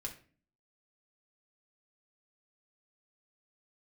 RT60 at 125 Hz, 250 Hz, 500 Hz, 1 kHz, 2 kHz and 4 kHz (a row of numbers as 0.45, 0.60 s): 0.65, 0.70, 0.45, 0.35, 0.40, 0.30 s